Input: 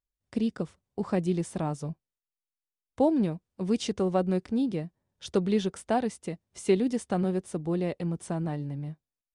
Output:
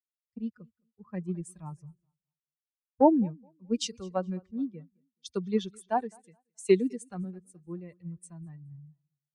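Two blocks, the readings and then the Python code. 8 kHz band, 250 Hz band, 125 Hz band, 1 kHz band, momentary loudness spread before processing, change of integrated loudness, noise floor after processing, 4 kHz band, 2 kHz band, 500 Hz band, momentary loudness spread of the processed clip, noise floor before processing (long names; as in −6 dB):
−1.5 dB, −3.5 dB, −7.5 dB, +1.0 dB, 12 LU, −0.5 dB, below −85 dBFS, −1.0 dB, −4.5 dB, −2.0 dB, 21 LU, below −85 dBFS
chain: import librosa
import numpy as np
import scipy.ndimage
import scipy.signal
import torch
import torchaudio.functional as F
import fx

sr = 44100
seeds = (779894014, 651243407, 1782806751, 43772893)

p1 = fx.bin_expand(x, sr, power=2.0)
p2 = fx.dynamic_eq(p1, sr, hz=900.0, q=7.5, threshold_db=-57.0, ratio=4.0, max_db=7)
p3 = p2 + fx.echo_feedback(p2, sr, ms=213, feedback_pct=52, wet_db=-23.0, dry=0)
p4 = fx.band_widen(p3, sr, depth_pct=100)
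y = p4 * librosa.db_to_amplitude(-3.5)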